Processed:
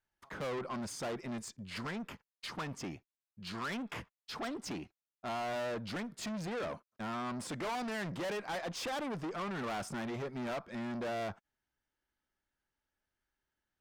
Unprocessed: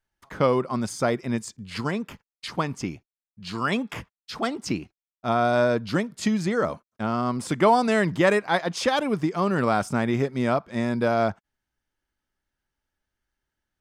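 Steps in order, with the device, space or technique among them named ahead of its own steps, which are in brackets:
tube preamp driven hard (tube saturation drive 32 dB, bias 0.25; low-shelf EQ 200 Hz −5.5 dB; high-shelf EQ 4,300 Hz −5 dB)
level −2.5 dB

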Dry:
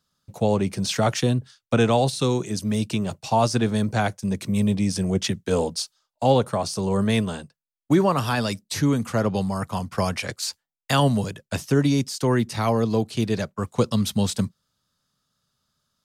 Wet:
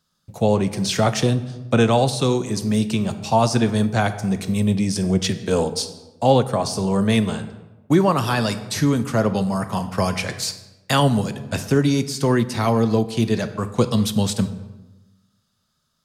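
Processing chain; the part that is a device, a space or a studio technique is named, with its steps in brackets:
compressed reverb return (on a send at −7 dB: convolution reverb RT60 1.0 s, pre-delay 3 ms + downward compressor, threshold −21 dBFS, peak gain reduction 7.5 dB)
on the sum: level +2.5 dB

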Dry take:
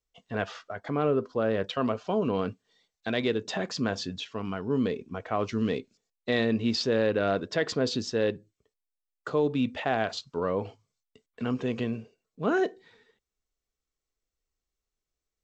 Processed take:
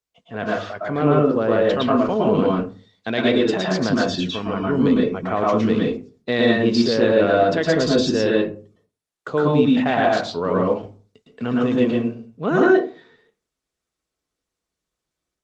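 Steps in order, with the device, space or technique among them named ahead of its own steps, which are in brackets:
far-field microphone of a smart speaker (convolution reverb RT60 0.35 s, pre-delay 106 ms, DRR −3 dB; high-pass filter 83 Hz 12 dB per octave; automatic gain control gain up to 5.5 dB; Opus 24 kbit/s 48,000 Hz)

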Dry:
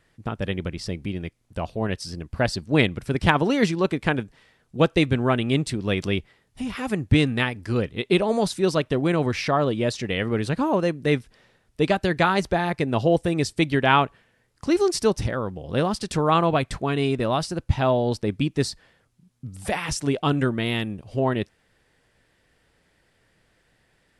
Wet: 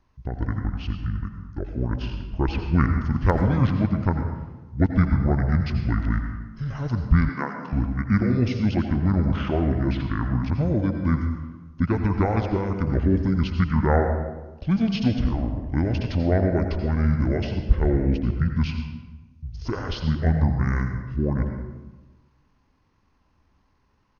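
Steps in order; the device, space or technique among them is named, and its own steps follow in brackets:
monster voice (pitch shifter −10 semitones; low-shelf EQ 200 Hz +8 dB; convolution reverb RT60 1.1 s, pre-delay 78 ms, DRR 5.5 dB)
0:07.29–0:07.73: high-pass filter 200 Hz 24 dB per octave
level −5 dB

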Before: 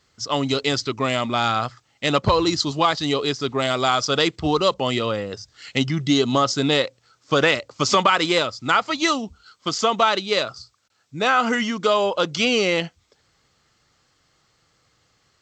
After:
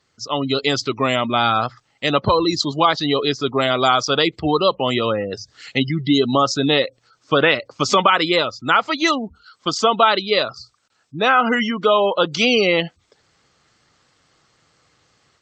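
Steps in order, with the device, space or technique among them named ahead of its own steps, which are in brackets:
noise-suppressed video call (high-pass filter 110 Hz 6 dB per octave; gate on every frequency bin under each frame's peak −25 dB strong; automatic gain control gain up to 6.5 dB; Opus 32 kbit/s 48,000 Hz)

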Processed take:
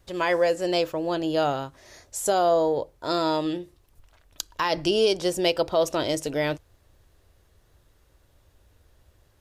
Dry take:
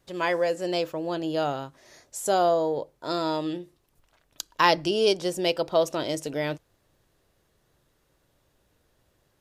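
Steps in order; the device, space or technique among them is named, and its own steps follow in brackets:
car stereo with a boomy subwoofer (low shelf with overshoot 110 Hz +8.5 dB, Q 1.5; brickwall limiter −15.5 dBFS, peak gain reduction 11.5 dB)
level +3.5 dB

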